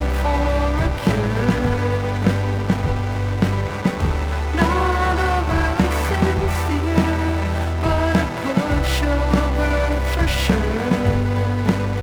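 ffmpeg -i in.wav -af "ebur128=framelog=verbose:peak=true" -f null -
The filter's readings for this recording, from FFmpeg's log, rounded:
Integrated loudness:
  I:         -19.8 LUFS
  Threshold: -29.8 LUFS
Loudness range:
  LRA:         1.2 LU
  Threshold: -39.9 LUFS
  LRA low:   -20.6 LUFS
  LRA high:  -19.4 LUFS
True peak:
  Peak:       -3.8 dBFS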